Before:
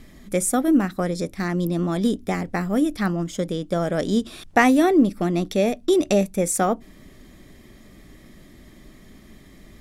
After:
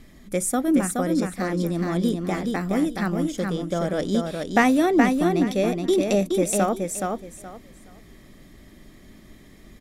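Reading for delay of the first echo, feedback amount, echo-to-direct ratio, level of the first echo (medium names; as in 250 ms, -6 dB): 422 ms, 22%, -4.0 dB, -4.0 dB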